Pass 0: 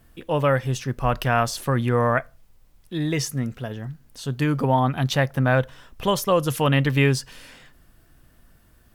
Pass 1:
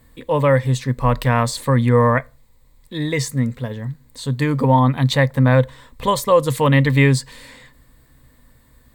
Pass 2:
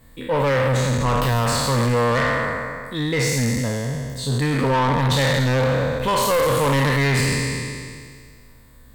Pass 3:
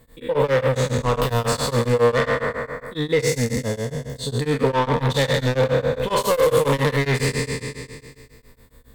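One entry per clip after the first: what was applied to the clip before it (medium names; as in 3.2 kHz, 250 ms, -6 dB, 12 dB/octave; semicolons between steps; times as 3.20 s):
rippled EQ curve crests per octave 1, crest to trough 10 dB; trim +2.5 dB
spectral sustain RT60 1.94 s; saturation -15.5 dBFS, distortion -8 dB
small resonant body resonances 460/3500 Hz, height 9 dB, ringing for 35 ms; tremolo of two beating tones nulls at 7.3 Hz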